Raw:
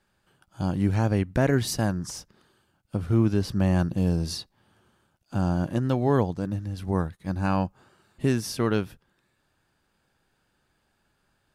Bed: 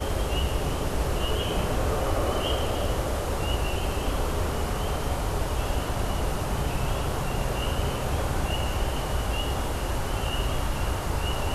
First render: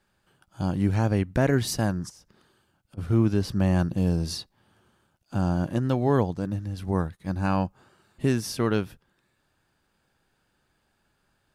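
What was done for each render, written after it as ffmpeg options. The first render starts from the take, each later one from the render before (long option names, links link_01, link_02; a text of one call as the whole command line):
ffmpeg -i in.wav -filter_complex "[0:a]asplit=3[link_01][link_02][link_03];[link_01]afade=type=out:start_time=2.08:duration=0.02[link_04];[link_02]acompressor=threshold=-48dB:ratio=12:attack=3.2:release=140:knee=1:detection=peak,afade=type=in:start_time=2.08:duration=0.02,afade=type=out:start_time=2.97:duration=0.02[link_05];[link_03]afade=type=in:start_time=2.97:duration=0.02[link_06];[link_04][link_05][link_06]amix=inputs=3:normalize=0" out.wav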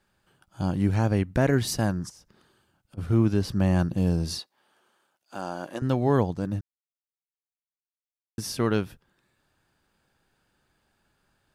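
ffmpeg -i in.wav -filter_complex "[0:a]asettb=1/sr,asplit=3[link_01][link_02][link_03];[link_01]atrim=end=4.394[link_04];[link_02]atrim=start=4.39:end=5.82,asetpts=PTS-STARTPTS,afade=type=in:duration=0.004:curve=qsin,afade=type=out:start_time=1.426:duration=0.004:curve=qsin,highpass=450[link_05];[link_03]atrim=start=5.816[link_06];[link_04][link_05]acrossfade=duration=0.004:curve1=hsin:curve2=qsin[link_07];[link_07][link_06]acrossfade=duration=0.004:curve1=qsin:curve2=hsin,asplit=3[link_08][link_09][link_10];[link_08]atrim=end=6.61,asetpts=PTS-STARTPTS,afade=type=out:start_time=6.606:duration=0.004:curve=hsin[link_11];[link_09]atrim=start=6.61:end=8.38,asetpts=PTS-STARTPTS,volume=0[link_12];[link_10]atrim=start=8.38,asetpts=PTS-STARTPTS,afade=type=in:duration=0.004:curve=hsin[link_13];[link_11][link_12][link_13]concat=n=3:v=0:a=1" out.wav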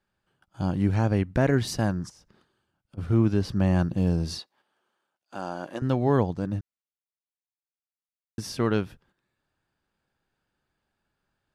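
ffmpeg -i in.wav -af "agate=range=-8dB:threshold=-60dB:ratio=16:detection=peak,highshelf=frequency=8900:gain=-11.5" out.wav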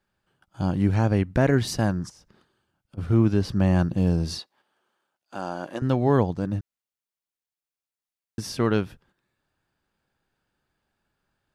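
ffmpeg -i in.wav -af "volume=2dB" out.wav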